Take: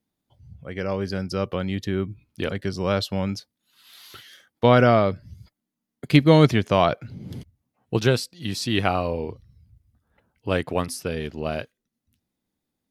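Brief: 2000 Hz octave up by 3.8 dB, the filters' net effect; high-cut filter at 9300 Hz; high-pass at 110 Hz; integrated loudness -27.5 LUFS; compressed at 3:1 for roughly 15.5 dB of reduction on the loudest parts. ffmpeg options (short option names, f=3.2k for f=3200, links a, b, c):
-af "highpass=110,lowpass=9.3k,equalizer=f=2k:t=o:g=5,acompressor=threshold=-31dB:ratio=3,volume=7dB"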